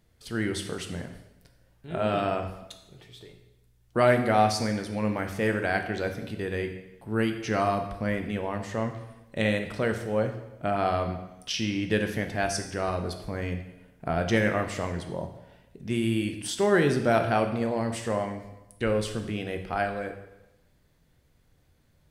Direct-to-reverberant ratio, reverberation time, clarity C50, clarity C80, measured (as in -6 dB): 5.0 dB, 0.95 s, 8.5 dB, 10.5 dB